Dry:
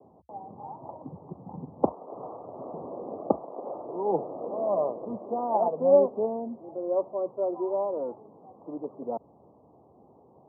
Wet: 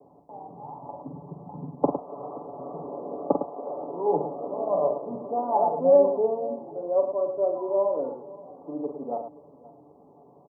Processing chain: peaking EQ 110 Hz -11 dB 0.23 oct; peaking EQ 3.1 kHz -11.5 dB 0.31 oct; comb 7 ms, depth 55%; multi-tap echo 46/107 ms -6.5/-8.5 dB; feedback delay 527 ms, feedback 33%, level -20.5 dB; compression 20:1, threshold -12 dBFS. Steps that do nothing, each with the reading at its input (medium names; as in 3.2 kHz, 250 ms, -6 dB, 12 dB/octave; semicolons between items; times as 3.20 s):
peaking EQ 3.1 kHz: input has nothing above 1.1 kHz